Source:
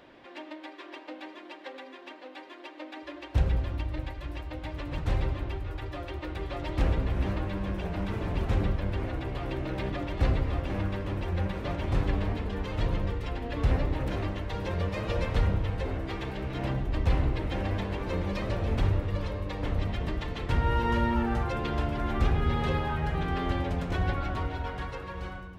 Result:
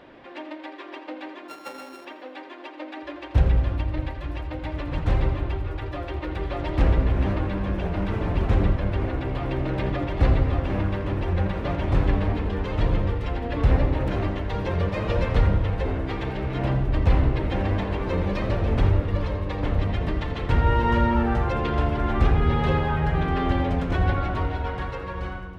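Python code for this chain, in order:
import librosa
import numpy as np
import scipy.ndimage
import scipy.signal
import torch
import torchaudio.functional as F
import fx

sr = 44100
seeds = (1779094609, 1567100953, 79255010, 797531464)

y = fx.sample_sort(x, sr, block=32, at=(1.48, 2.05))
y = fx.high_shelf(y, sr, hz=4500.0, db=-10.5)
y = fx.echo_feedback(y, sr, ms=84, feedback_pct=58, wet_db=-14)
y = F.gain(torch.from_numpy(y), 6.0).numpy()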